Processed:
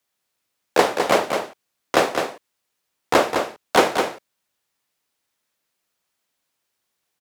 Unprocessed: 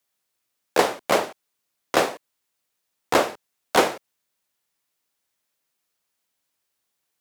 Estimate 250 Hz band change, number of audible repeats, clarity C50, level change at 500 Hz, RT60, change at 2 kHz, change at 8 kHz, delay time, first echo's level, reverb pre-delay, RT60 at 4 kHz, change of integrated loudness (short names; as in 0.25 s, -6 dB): +3.5 dB, 1, none, +3.5 dB, none, +3.0 dB, +1.0 dB, 0.208 s, -6.0 dB, none, none, +2.0 dB